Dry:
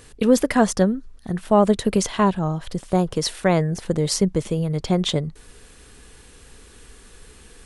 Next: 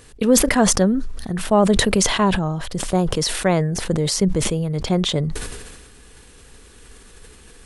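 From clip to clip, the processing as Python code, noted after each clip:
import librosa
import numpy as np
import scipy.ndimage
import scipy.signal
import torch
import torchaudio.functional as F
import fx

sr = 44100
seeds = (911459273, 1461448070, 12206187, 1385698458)

y = fx.sustainer(x, sr, db_per_s=38.0)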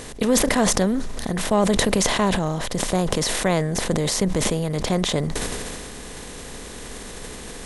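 y = fx.bin_compress(x, sr, power=0.6)
y = F.gain(torch.from_numpy(y), -5.5).numpy()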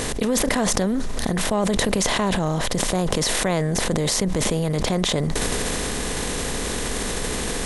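y = fx.env_flatten(x, sr, amount_pct=70)
y = F.gain(torch.from_numpy(y), -4.0).numpy()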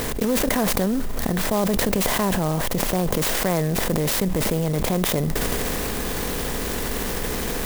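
y = fx.clock_jitter(x, sr, seeds[0], jitter_ms=0.062)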